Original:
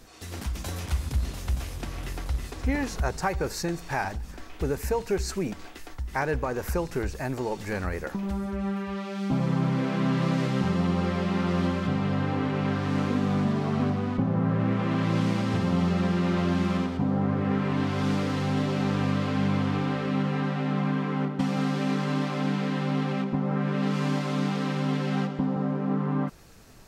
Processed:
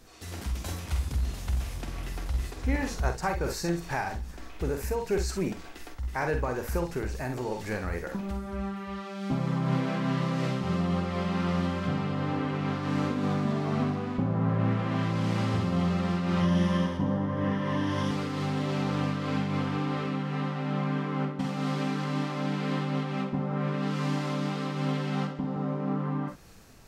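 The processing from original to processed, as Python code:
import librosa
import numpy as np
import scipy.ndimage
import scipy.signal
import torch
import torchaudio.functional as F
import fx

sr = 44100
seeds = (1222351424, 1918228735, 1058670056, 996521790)

y = fx.ripple_eq(x, sr, per_octave=1.2, db=10, at=(16.4, 18.11))
y = fx.room_early_taps(y, sr, ms=(47, 64), db=(-7.5, -11.0))
y = fx.am_noise(y, sr, seeds[0], hz=5.7, depth_pct=50)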